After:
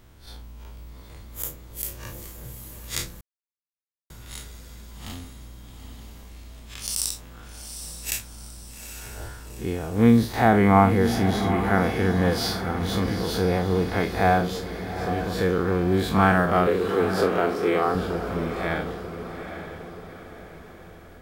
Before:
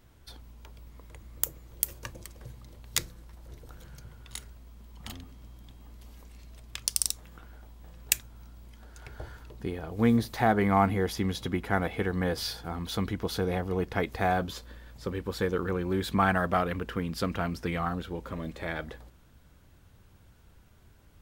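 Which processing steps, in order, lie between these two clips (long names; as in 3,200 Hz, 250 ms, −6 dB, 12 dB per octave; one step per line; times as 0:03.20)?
spectrum smeared in time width 87 ms
0:16.67–0:17.95: high-pass with resonance 400 Hz, resonance Q 4.9
feedback delay with all-pass diffusion 832 ms, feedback 47%, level −9 dB
0:03.21–0:04.10: silence
level +8 dB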